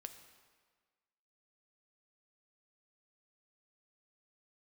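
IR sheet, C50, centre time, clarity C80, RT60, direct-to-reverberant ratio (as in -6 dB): 9.5 dB, 19 ms, 10.5 dB, 1.5 s, 7.5 dB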